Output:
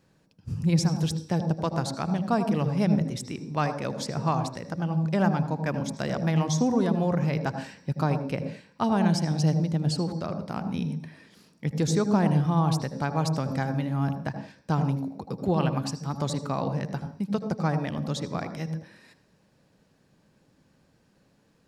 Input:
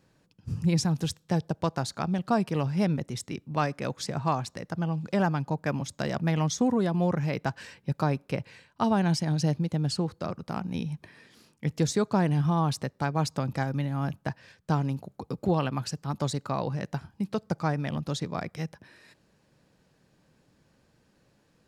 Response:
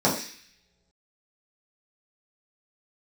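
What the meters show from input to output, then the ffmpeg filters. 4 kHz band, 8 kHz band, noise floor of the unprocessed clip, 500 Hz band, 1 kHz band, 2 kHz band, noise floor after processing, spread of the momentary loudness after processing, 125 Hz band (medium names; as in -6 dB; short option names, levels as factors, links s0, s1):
+0.5 dB, +0.5 dB, -67 dBFS, +1.5 dB, +1.0 dB, 0.0 dB, -65 dBFS, 10 LU, +2.0 dB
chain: -filter_complex "[0:a]asplit=2[s0][s1];[1:a]atrim=start_sample=2205,adelay=77[s2];[s1][s2]afir=irnorm=-1:irlink=0,volume=0.0531[s3];[s0][s3]amix=inputs=2:normalize=0"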